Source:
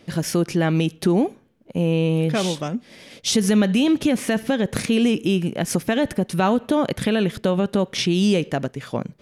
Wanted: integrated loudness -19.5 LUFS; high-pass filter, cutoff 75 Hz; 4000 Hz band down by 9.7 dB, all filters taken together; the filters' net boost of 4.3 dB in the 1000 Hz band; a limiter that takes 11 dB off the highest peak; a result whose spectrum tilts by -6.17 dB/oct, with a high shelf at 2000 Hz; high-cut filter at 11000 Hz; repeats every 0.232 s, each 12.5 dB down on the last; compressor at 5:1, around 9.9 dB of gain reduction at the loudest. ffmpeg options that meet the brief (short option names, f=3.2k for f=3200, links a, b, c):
-af "highpass=75,lowpass=11k,equalizer=f=1k:t=o:g=7.5,highshelf=f=2k:g=-6,equalizer=f=4k:t=o:g=-8,acompressor=threshold=-25dB:ratio=5,alimiter=level_in=1dB:limit=-24dB:level=0:latency=1,volume=-1dB,aecho=1:1:232|464|696:0.237|0.0569|0.0137,volume=14.5dB"